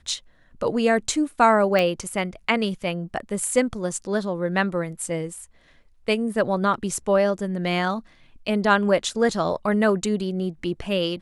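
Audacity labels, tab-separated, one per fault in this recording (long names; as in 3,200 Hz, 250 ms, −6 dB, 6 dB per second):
1.790000	1.790000	click −10 dBFS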